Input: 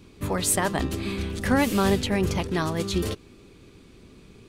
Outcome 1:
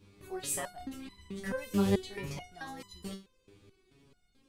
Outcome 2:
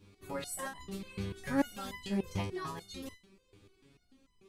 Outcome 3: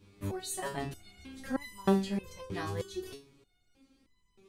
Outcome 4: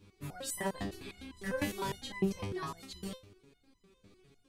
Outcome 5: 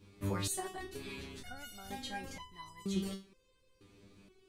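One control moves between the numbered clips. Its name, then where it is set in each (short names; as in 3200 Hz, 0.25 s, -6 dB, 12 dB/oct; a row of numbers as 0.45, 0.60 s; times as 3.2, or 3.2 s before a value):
stepped resonator, rate: 4.6, 6.8, 3.2, 9.9, 2.1 Hz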